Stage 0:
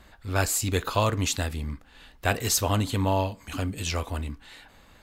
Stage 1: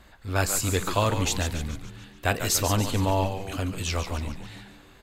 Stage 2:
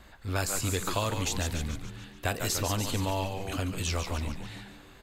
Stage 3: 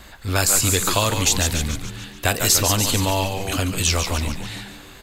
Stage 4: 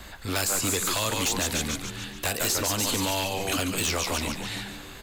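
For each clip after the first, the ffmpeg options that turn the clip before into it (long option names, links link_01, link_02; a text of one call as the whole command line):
ffmpeg -i in.wav -filter_complex "[0:a]asplit=7[link_01][link_02][link_03][link_04][link_05][link_06][link_07];[link_02]adelay=143,afreqshift=-93,volume=-8.5dB[link_08];[link_03]adelay=286,afreqshift=-186,volume=-14.3dB[link_09];[link_04]adelay=429,afreqshift=-279,volume=-20.2dB[link_10];[link_05]adelay=572,afreqshift=-372,volume=-26dB[link_11];[link_06]adelay=715,afreqshift=-465,volume=-31.9dB[link_12];[link_07]adelay=858,afreqshift=-558,volume=-37.7dB[link_13];[link_01][link_08][link_09][link_10][link_11][link_12][link_13]amix=inputs=7:normalize=0" out.wav
ffmpeg -i in.wav -filter_complex "[0:a]acrossover=split=1600|4000[link_01][link_02][link_03];[link_01]acompressor=threshold=-28dB:ratio=4[link_04];[link_02]acompressor=threshold=-39dB:ratio=4[link_05];[link_03]acompressor=threshold=-32dB:ratio=4[link_06];[link_04][link_05][link_06]amix=inputs=3:normalize=0" out.wav
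ffmpeg -i in.wav -af "highshelf=frequency=2900:gain=7.5,volume=8.5dB" out.wav
ffmpeg -i in.wav -filter_complex "[0:a]acrossover=split=190|2000[link_01][link_02][link_03];[link_01]acompressor=threshold=-38dB:ratio=4[link_04];[link_02]acompressor=threshold=-26dB:ratio=4[link_05];[link_03]acompressor=threshold=-25dB:ratio=4[link_06];[link_04][link_05][link_06]amix=inputs=3:normalize=0,aeval=exprs='0.112*(abs(mod(val(0)/0.112+3,4)-2)-1)':channel_layout=same" out.wav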